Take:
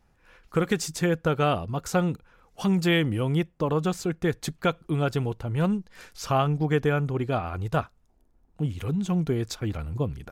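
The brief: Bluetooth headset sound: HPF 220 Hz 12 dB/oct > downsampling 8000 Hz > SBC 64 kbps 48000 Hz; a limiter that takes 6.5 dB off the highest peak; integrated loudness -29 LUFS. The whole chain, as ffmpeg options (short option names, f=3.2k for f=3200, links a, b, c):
-af "alimiter=limit=-17dB:level=0:latency=1,highpass=220,aresample=8000,aresample=44100,volume=2.5dB" -ar 48000 -c:a sbc -b:a 64k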